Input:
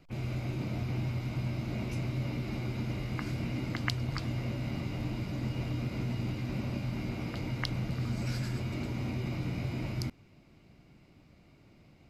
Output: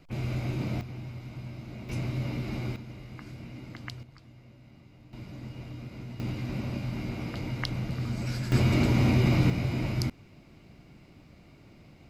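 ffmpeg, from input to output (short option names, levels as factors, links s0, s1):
-af "asetnsamples=n=441:p=0,asendcmd='0.81 volume volume -6.5dB;1.89 volume volume 2dB;2.76 volume volume -8.5dB;4.03 volume volume -18.5dB;5.13 volume volume -7dB;6.2 volume volume 1.5dB;8.52 volume volume 12dB;9.5 volume volume 5.5dB',volume=1.5"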